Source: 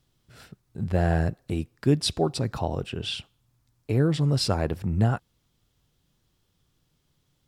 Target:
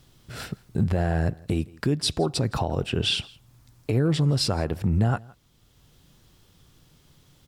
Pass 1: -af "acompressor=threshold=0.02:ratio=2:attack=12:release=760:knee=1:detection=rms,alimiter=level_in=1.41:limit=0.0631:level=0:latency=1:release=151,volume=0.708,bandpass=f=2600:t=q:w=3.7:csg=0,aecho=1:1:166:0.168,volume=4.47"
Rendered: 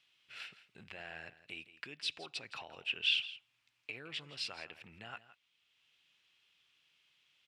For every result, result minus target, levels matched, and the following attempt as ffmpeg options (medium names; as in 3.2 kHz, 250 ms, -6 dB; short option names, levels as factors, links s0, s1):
2 kHz band +10.0 dB; echo-to-direct +8.5 dB
-af "acompressor=threshold=0.02:ratio=2:attack=12:release=760:knee=1:detection=rms,alimiter=level_in=1.41:limit=0.0631:level=0:latency=1:release=151,volume=0.708,aecho=1:1:166:0.168,volume=4.47"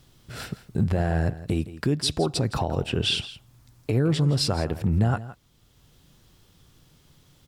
echo-to-direct +8.5 dB
-af "acompressor=threshold=0.02:ratio=2:attack=12:release=760:knee=1:detection=rms,alimiter=level_in=1.41:limit=0.0631:level=0:latency=1:release=151,volume=0.708,aecho=1:1:166:0.0631,volume=4.47"